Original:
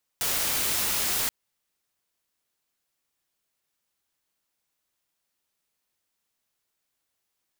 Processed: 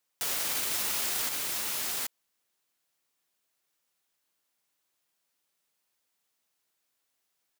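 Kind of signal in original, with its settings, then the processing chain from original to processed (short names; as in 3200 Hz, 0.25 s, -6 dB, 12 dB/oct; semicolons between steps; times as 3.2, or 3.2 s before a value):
noise white, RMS -26.5 dBFS 1.08 s
low shelf 110 Hz -11.5 dB; on a send: echo 0.777 s -6 dB; on the sum: limiter -21 dBFS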